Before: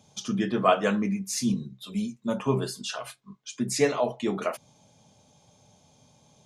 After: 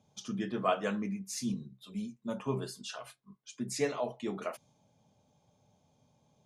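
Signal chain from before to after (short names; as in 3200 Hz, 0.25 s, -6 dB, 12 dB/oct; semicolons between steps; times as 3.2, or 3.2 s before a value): mismatched tape noise reduction decoder only; gain -8.5 dB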